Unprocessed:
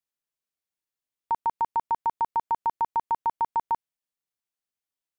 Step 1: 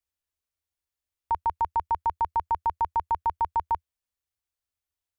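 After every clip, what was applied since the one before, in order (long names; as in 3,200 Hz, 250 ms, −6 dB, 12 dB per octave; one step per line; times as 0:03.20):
low shelf with overshoot 110 Hz +10.5 dB, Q 3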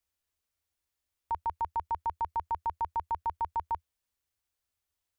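brickwall limiter −28.5 dBFS, peak gain reduction 10.5 dB
level +3.5 dB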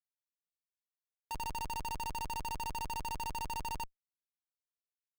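single-tap delay 89 ms −11 dB
compressor whose output falls as the input rises −36 dBFS, ratio −1
comparator with hysteresis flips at −41 dBFS
level +4 dB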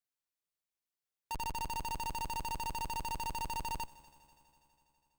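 echo machine with several playback heads 82 ms, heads first and third, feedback 72%, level −22 dB
level +1 dB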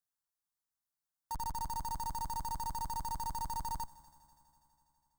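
phaser with its sweep stopped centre 1,100 Hz, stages 4
level +1 dB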